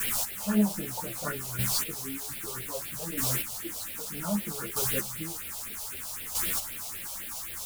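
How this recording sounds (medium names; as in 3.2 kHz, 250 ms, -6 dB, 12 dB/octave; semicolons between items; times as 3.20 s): a quantiser's noise floor 6-bit, dither triangular; phasing stages 4, 3.9 Hz, lowest notch 290–1100 Hz; chopped level 0.63 Hz, depth 65%, duty 15%; a shimmering, thickened sound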